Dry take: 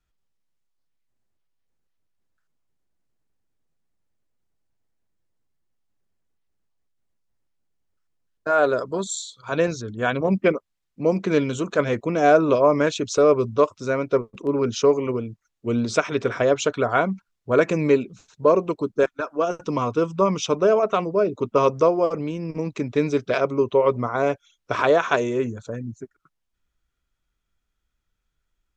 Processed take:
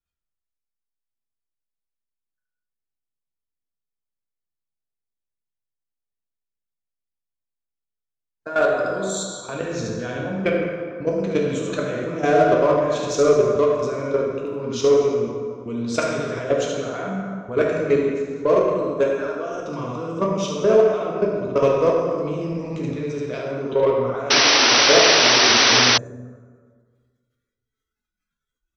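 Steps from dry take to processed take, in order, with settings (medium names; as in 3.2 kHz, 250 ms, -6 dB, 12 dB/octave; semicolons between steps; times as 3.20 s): on a send: delay 73 ms -4 dB; on the sum: level held to a coarse grid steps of 16 dB; plate-style reverb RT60 1.7 s, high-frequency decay 0.65×, DRR -1.5 dB; spectral noise reduction 13 dB; in parallel at -4.5 dB: saturation -19.5 dBFS, distortion -7 dB; on the sum: dynamic bell 950 Hz, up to -4 dB, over -31 dBFS, Q 1.1; painted sound noise, 24.30–25.98 s, 230–6100 Hz -13 dBFS; trim -2 dB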